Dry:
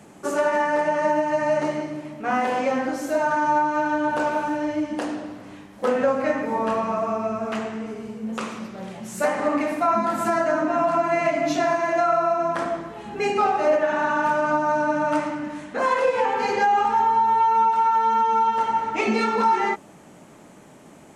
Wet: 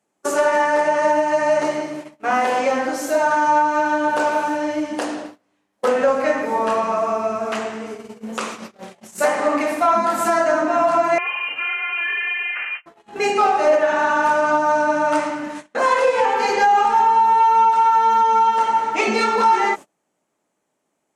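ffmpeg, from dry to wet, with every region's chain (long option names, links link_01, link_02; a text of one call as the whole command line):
ffmpeg -i in.wav -filter_complex "[0:a]asettb=1/sr,asplit=3[link_01][link_02][link_03];[link_01]atrim=end=11.184[link_04];[link_02]atrim=start=11.18:end=12.86,asetpts=PTS-STARTPTS,afade=type=in:duration=0.004:curve=qsin,afade=type=out:start_time=1.676:duration=0.004:curve=qsin,highpass=frequency=880:poles=1,aeval=exprs='(tanh(17.8*val(0)+0.2)-tanh(0.2))/17.8':channel_layout=same,lowpass=frequency=2600:width_type=q:width=0.5098,lowpass=frequency=2600:width_type=q:width=0.6013,lowpass=frequency=2600:width_type=q:width=0.9,lowpass=frequency=2600:width_type=q:width=2.563,afreqshift=-3100[link_05];[link_03]atrim=start=12.856[link_06];[link_04][link_05]acrossfade=duration=0.004:curve1=hsin:curve2=qsin[link_07];[link_07][link_06]acrossfade=duration=0.004:curve1=qsin:curve2=hsin,agate=range=-29dB:threshold=-33dB:ratio=16:detection=peak,bass=frequency=250:gain=-11,treble=frequency=4000:gain=4,acontrast=64,volume=-1.5dB" out.wav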